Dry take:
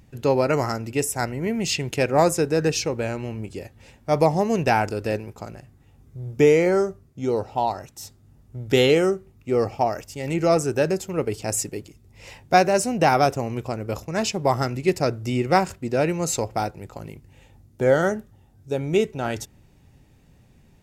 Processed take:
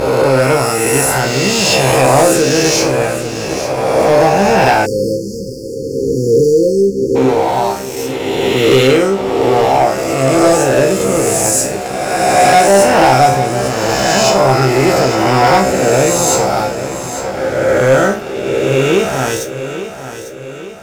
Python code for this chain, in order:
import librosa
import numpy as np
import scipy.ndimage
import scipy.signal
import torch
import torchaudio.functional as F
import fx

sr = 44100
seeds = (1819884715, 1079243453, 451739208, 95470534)

p1 = fx.spec_swells(x, sr, rise_s=2.12)
p2 = fx.comb_fb(p1, sr, f0_hz=66.0, decay_s=0.38, harmonics='all', damping=0.0, mix_pct=90)
p3 = fx.leveller(p2, sr, passes=3)
p4 = p3 + fx.echo_feedback(p3, sr, ms=850, feedback_pct=51, wet_db=-11.5, dry=0)
p5 = fx.spec_erase(p4, sr, start_s=4.86, length_s=2.3, low_hz=540.0, high_hz=4300.0)
y = F.gain(torch.from_numpy(p5), 4.5).numpy()